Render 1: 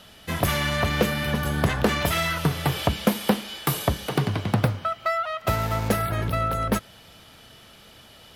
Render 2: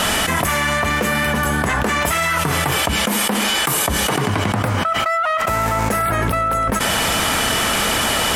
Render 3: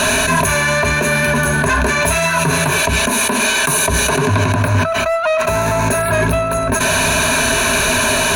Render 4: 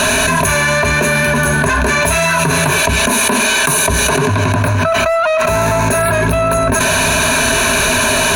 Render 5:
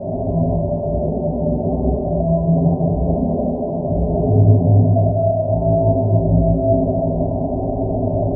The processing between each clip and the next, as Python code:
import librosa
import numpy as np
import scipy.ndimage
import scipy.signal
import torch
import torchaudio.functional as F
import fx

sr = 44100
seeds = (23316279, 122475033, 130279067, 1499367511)

y1 = fx.graphic_eq(x, sr, hz=(125, 250, 1000, 2000, 4000, 8000), db=(-5, 3, 6, 5, -5, 10))
y1 = fx.env_flatten(y1, sr, amount_pct=100)
y1 = y1 * librosa.db_to_amplitude(-5.0)
y2 = fx.ripple_eq(y1, sr, per_octave=1.5, db=16)
y2 = 10.0 ** (-11.0 / 20.0) * np.tanh(y2 / 10.0 ** (-11.0 / 20.0))
y2 = y2 * librosa.db_to_amplitude(3.0)
y3 = fx.env_flatten(y2, sr, amount_pct=100)
y3 = y3 * librosa.db_to_amplitude(-1.5)
y4 = scipy.signal.sosfilt(scipy.signal.cheby1(6, 3, 780.0, 'lowpass', fs=sr, output='sos'), y3)
y4 = fx.rev_fdn(y4, sr, rt60_s=2.7, lf_ratio=1.0, hf_ratio=0.8, size_ms=53.0, drr_db=-10.0)
y4 = y4 * librosa.db_to_amplitude(-9.0)